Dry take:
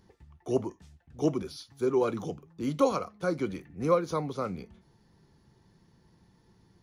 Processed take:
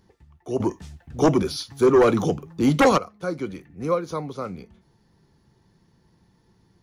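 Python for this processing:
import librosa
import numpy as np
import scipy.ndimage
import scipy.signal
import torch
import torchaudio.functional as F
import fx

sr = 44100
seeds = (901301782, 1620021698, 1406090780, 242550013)

y = fx.fold_sine(x, sr, drive_db=8, ceiling_db=-12.5, at=(0.6, 2.98))
y = y * librosa.db_to_amplitude(1.5)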